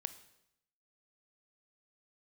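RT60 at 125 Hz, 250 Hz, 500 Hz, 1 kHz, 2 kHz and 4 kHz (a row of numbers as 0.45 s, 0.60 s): 0.90 s, 0.85 s, 0.80 s, 0.80 s, 0.75 s, 0.75 s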